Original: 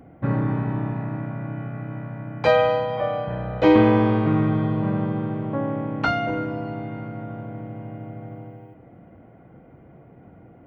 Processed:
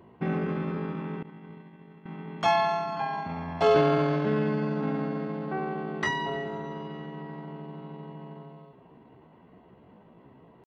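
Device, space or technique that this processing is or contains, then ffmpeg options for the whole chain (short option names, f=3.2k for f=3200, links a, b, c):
chipmunk voice: -filter_complex "[0:a]asettb=1/sr,asplit=3[a][b][c];[a]atrim=end=1.244[d];[b]atrim=start=1.24:end=2.07,asetpts=PTS-STARTPTS,afade=t=in:d=0.004:c=qsin,afade=t=out:st=0.826:d=0.004:c=qsin,agate=range=-33dB:threshold=-22dB:ratio=3:detection=peak[e];[c]atrim=start=2.066[f];[d][e]acrossfade=d=0.004:c1=hsin:c2=qsin[g];[g][f]acrossfade=d=0.004:c1=qsin:c2=hsin,asetrate=60591,aresample=44100,atempo=0.727827,volume=-6dB"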